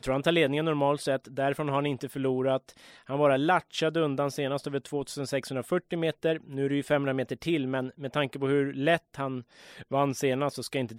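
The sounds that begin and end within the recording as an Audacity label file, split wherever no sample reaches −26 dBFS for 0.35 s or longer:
3.100000	9.340000	sound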